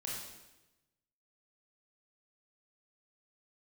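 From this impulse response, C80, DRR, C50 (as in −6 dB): 3.0 dB, −4.5 dB, 0.0 dB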